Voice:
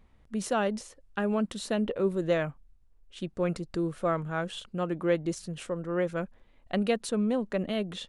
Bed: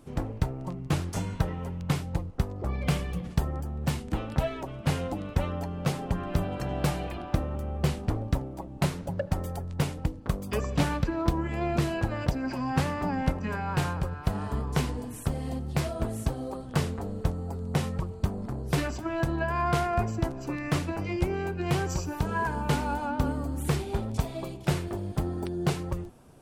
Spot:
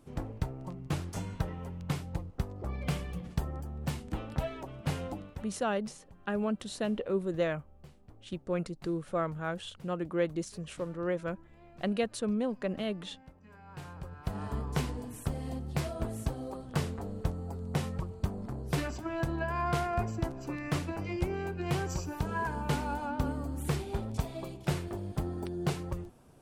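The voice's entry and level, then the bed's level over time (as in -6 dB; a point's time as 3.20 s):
5.10 s, -3.5 dB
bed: 5.14 s -6 dB
5.63 s -27.5 dB
13.32 s -27.5 dB
14.44 s -4.5 dB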